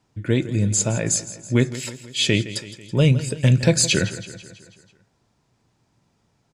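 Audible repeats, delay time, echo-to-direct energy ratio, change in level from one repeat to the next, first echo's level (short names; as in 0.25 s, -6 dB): 5, 0.164 s, -13.5 dB, -5.0 dB, -15.0 dB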